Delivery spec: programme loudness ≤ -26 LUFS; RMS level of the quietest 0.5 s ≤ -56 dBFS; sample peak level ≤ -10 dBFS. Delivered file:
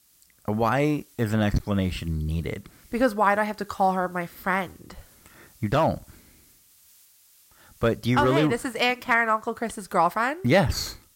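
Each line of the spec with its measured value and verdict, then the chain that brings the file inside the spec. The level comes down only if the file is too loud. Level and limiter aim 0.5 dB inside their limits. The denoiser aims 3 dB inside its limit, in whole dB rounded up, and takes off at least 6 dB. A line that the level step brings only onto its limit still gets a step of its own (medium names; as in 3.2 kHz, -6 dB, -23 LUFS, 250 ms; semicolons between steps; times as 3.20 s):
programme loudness -24.5 LUFS: fail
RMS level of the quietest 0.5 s -57 dBFS: pass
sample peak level -6.5 dBFS: fail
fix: trim -2 dB; peak limiter -10.5 dBFS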